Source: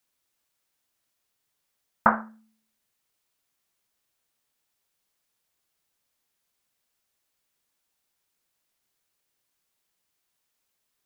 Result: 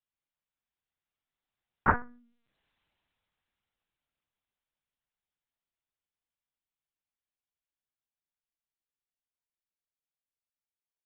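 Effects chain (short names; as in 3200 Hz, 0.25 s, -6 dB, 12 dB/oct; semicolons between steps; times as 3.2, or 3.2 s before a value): Doppler pass-by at 2.68, 31 m/s, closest 9.7 m; LPC vocoder at 8 kHz pitch kept; gain +5.5 dB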